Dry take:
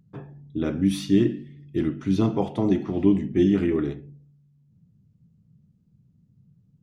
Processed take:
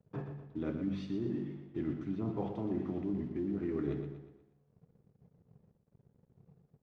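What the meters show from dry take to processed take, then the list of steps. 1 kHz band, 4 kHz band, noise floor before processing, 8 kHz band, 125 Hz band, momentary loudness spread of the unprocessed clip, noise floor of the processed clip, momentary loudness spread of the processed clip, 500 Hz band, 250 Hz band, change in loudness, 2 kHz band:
-12.0 dB, under -15 dB, -62 dBFS, n/a, -12.0 dB, 15 LU, -74 dBFS, 8 LU, -12.5 dB, -13.5 dB, -14.0 dB, -14.0 dB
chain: treble ducked by the level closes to 1100 Hz, closed at -15 dBFS; HPF 59 Hz 24 dB/oct; bell 3300 Hz -3.5 dB 0.84 oct; de-hum 95.52 Hz, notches 2; limiter -14 dBFS, peak gain reduction 6 dB; reverse; compressor, threshold -33 dBFS, peak gain reduction 13.5 dB; reverse; crossover distortion -60 dBFS; air absorption 91 m; feedback echo 0.12 s, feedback 44%, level -8 dB

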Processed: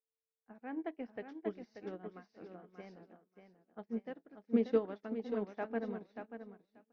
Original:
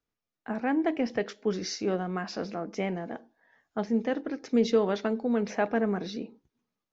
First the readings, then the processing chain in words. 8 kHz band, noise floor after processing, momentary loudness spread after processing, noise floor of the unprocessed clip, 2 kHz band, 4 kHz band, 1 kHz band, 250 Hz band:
n/a, under -85 dBFS, 20 LU, under -85 dBFS, -14.5 dB, under -20 dB, -14.0 dB, -10.5 dB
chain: on a send: feedback echo 0.585 s, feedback 39%, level -3.5 dB; on the sum: whine 450 Hz -53 dBFS; Gaussian blur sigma 1.8 samples; upward expander 2.5:1, over -47 dBFS; gain -5 dB

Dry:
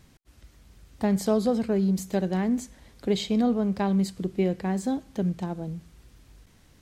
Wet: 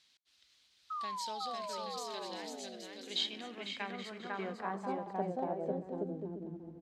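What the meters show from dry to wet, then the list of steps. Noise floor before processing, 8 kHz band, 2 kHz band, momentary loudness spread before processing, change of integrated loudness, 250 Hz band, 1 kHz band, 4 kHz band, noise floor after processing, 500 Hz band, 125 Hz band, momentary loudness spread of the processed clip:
-58 dBFS, -8.5 dB, -4.0 dB, 9 LU, -13.0 dB, -18.5 dB, -3.0 dB, +0.5 dB, -70 dBFS, -11.5 dB, -18.0 dB, 7 LU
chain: painted sound fall, 0.9–2.82, 210–1300 Hz -23 dBFS; bouncing-ball echo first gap 0.5 s, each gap 0.65×, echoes 5; band-pass sweep 3900 Hz -> 300 Hz, 3.04–6.52; gain +1.5 dB

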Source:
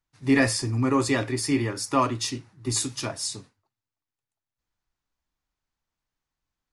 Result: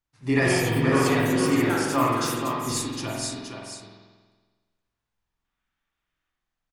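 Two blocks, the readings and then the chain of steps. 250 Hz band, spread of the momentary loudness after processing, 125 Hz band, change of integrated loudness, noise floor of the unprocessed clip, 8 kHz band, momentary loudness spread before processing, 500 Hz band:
+1.5 dB, 15 LU, +2.0 dB, +2.0 dB, under -85 dBFS, -1.5 dB, 10 LU, +4.0 dB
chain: echoes that change speed 0.227 s, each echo +5 st, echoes 2, each echo -6 dB; on a send: echo 0.471 s -6.5 dB; on the sum: spectral gain 5.45–6.3, 1100–3800 Hz +7 dB; spring tank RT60 1.4 s, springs 46 ms, chirp 55 ms, DRR -2.5 dB; gain -3.5 dB

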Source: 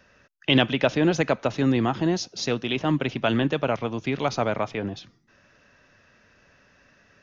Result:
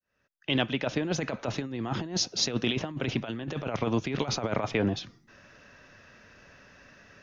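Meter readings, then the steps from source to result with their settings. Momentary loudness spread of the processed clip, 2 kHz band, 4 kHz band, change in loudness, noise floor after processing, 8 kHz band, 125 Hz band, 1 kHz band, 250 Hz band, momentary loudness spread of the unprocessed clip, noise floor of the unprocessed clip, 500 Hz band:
7 LU, -6.5 dB, -2.5 dB, -6.0 dB, -74 dBFS, n/a, -5.0 dB, -7.5 dB, -6.5 dB, 7 LU, -60 dBFS, -7.0 dB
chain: opening faded in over 2.07 s; negative-ratio compressor -28 dBFS, ratio -0.5

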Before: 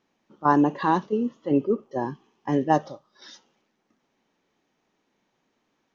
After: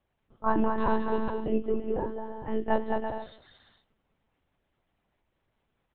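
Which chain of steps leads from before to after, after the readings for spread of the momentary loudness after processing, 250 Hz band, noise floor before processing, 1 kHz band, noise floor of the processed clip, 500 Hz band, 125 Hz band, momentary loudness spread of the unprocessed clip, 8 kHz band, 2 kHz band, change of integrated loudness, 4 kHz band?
10 LU, -6.5 dB, -74 dBFS, -6.5 dB, -78 dBFS, -2.5 dB, -8.5 dB, 11 LU, n/a, -4.5 dB, -6.0 dB, -6.0 dB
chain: on a send: bouncing-ball echo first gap 0.21 s, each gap 0.6×, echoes 5; on the sum: monotone LPC vocoder at 8 kHz 220 Hz; gain -5.5 dB

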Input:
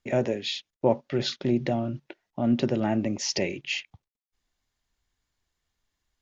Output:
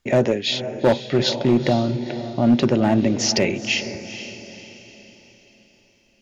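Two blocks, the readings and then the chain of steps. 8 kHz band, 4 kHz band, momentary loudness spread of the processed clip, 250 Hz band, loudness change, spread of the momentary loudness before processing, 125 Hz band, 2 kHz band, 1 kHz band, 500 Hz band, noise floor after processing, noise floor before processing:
n/a, +8.5 dB, 15 LU, +8.0 dB, +7.5 dB, 7 LU, +8.0 dB, +8.5 dB, +7.5 dB, +7.5 dB, -59 dBFS, under -85 dBFS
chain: diffused feedback echo 0.469 s, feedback 44%, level -11.5 dB; hard clip -17.5 dBFS, distortion -16 dB; gain +8 dB

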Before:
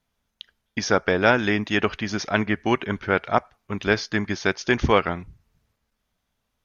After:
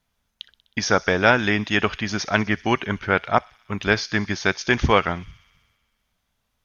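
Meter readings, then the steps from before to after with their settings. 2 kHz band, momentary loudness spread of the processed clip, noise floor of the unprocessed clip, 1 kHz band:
+2.5 dB, 10 LU, -78 dBFS, +2.0 dB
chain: bell 360 Hz -4 dB 1.7 oct; thin delay 63 ms, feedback 77%, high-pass 3900 Hz, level -16 dB; gain +3 dB

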